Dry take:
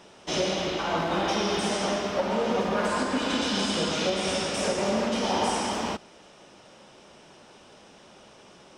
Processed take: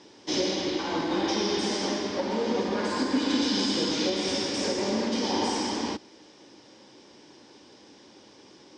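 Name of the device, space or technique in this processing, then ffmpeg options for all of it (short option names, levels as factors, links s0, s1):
car door speaker: -af "highpass=91,equalizer=f=170:t=q:w=4:g=-8,equalizer=f=300:t=q:w=4:g=9,equalizer=f=660:t=q:w=4:g=-10,equalizer=f=1300:t=q:w=4:g=-10,equalizer=f=2700:t=q:w=4:g=-6,equalizer=f=4800:t=q:w=4:g=6,lowpass=f=7100:w=0.5412,lowpass=f=7100:w=1.3066"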